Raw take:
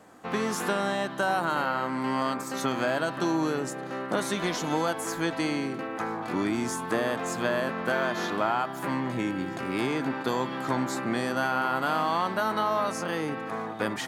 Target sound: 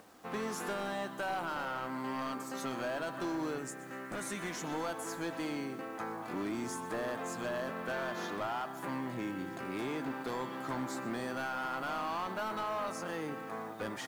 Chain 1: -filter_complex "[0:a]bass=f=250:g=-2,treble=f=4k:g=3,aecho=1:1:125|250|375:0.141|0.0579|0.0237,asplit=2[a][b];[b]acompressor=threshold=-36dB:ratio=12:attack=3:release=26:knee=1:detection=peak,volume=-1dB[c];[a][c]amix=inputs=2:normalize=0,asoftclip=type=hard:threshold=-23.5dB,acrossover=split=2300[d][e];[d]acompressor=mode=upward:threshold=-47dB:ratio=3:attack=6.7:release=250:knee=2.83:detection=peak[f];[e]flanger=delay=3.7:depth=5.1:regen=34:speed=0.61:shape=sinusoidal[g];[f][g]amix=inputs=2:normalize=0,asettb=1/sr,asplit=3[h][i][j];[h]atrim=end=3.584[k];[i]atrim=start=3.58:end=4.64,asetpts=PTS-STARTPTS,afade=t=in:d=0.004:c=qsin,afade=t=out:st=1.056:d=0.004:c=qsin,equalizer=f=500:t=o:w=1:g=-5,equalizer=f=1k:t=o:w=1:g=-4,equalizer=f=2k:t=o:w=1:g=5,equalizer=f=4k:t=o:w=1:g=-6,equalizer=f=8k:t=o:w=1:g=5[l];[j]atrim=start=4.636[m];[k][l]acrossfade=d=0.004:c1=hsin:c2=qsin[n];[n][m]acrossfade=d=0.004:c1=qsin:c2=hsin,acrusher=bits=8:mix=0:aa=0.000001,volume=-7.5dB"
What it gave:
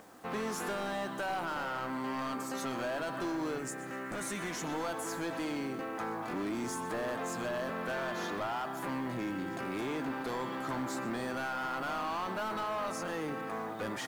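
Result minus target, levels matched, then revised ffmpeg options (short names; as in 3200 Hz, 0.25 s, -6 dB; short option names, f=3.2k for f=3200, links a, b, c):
compressor: peak gain reduction +14.5 dB
-filter_complex "[0:a]bass=f=250:g=-2,treble=f=4k:g=3,aecho=1:1:125|250|375:0.141|0.0579|0.0237,asoftclip=type=hard:threshold=-23.5dB,acrossover=split=2300[a][b];[a]acompressor=mode=upward:threshold=-47dB:ratio=3:attack=6.7:release=250:knee=2.83:detection=peak[c];[b]flanger=delay=3.7:depth=5.1:regen=34:speed=0.61:shape=sinusoidal[d];[c][d]amix=inputs=2:normalize=0,asettb=1/sr,asplit=3[e][f][g];[e]atrim=end=3.584[h];[f]atrim=start=3.58:end=4.64,asetpts=PTS-STARTPTS,afade=t=in:d=0.004:c=qsin,afade=t=out:st=1.056:d=0.004:c=qsin,equalizer=f=500:t=o:w=1:g=-5,equalizer=f=1k:t=o:w=1:g=-4,equalizer=f=2k:t=o:w=1:g=5,equalizer=f=4k:t=o:w=1:g=-6,equalizer=f=8k:t=o:w=1:g=5[i];[g]atrim=start=4.636[j];[h][i]acrossfade=d=0.004:c1=hsin:c2=qsin[k];[k][j]acrossfade=d=0.004:c1=qsin:c2=hsin,acrusher=bits=8:mix=0:aa=0.000001,volume=-7.5dB"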